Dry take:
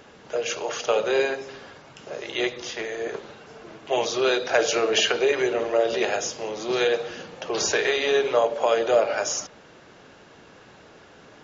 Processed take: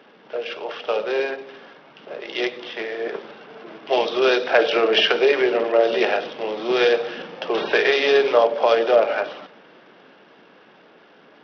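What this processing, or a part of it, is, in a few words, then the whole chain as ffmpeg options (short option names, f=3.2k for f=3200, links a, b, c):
Bluetooth headset: -af "highpass=f=180:w=0.5412,highpass=f=180:w=1.3066,dynaudnorm=f=320:g=17:m=12dB,aresample=8000,aresample=44100,volume=-1dB" -ar 44100 -c:a sbc -b:a 64k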